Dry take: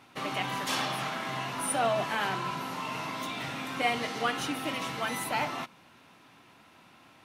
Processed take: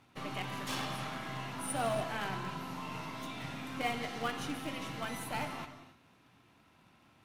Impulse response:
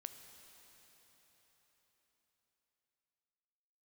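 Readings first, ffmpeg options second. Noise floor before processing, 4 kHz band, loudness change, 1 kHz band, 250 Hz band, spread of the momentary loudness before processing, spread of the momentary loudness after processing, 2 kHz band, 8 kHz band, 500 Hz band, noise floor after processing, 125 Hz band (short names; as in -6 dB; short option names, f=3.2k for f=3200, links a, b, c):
-58 dBFS, -7.5 dB, -6.5 dB, -7.5 dB, -3.5 dB, 7 LU, 7 LU, -7.5 dB, -7.5 dB, -6.0 dB, -65 dBFS, -1.0 dB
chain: -filter_complex "[0:a]asplit=2[a][b];[b]acrusher=bits=5:dc=4:mix=0:aa=0.000001,volume=-10dB[c];[a][c]amix=inputs=2:normalize=0,lowshelf=f=180:g=11.5[d];[1:a]atrim=start_sample=2205,afade=t=out:st=0.25:d=0.01,atrim=end_sample=11466,asetrate=29106,aresample=44100[e];[d][e]afir=irnorm=-1:irlink=0,volume=-6.5dB"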